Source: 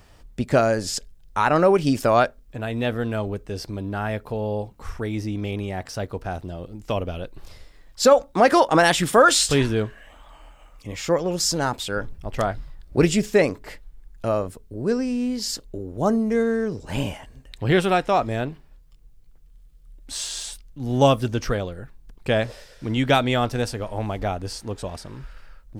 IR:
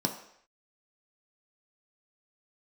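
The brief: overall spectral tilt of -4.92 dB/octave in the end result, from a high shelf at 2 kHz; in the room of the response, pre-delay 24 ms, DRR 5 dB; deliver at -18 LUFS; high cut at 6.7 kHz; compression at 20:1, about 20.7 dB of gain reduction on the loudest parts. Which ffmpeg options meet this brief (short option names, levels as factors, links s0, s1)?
-filter_complex "[0:a]lowpass=6700,highshelf=f=2000:g=5,acompressor=threshold=0.0316:ratio=20,asplit=2[s0][s1];[1:a]atrim=start_sample=2205,adelay=24[s2];[s1][s2]afir=irnorm=-1:irlink=0,volume=0.266[s3];[s0][s3]amix=inputs=2:normalize=0,volume=5.31"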